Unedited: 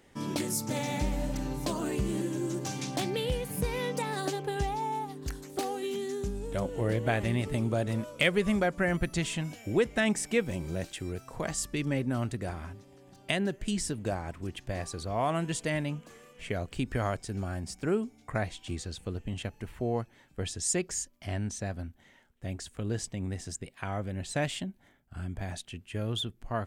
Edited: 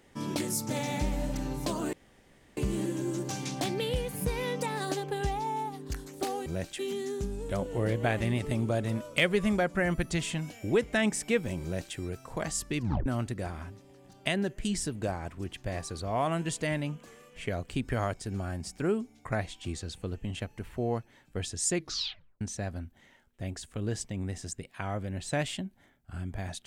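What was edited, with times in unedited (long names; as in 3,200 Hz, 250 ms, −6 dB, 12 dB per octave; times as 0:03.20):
0:01.93: splice in room tone 0.64 s
0:10.66–0:10.99: duplicate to 0:05.82
0:11.82: tape stop 0.27 s
0:20.77: tape stop 0.67 s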